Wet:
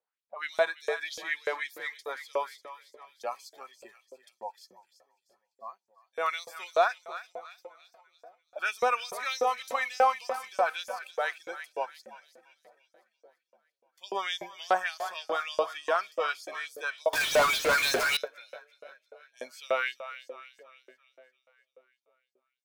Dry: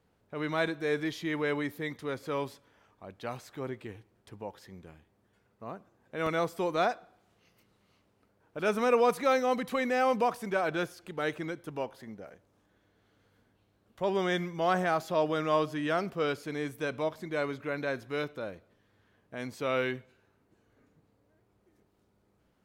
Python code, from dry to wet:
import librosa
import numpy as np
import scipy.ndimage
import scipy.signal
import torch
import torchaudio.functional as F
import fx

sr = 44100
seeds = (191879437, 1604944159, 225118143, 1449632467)

y = fx.noise_reduce_blind(x, sr, reduce_db=20)
y = fx.echo_split(y, sr, split_hz=590.0, low_ms=492, high_ms=342, feedback_pct=52, wet_db=-12.5)
y = fx.filter_lfo_highpass(y, sr, shape='saw_up', hz=3.4, low_hz=490.0, high_hz=7100.0, q=2.6)
y = fx.power_curve(y, sr, exponent=0.35, at=(17.13, 18.17))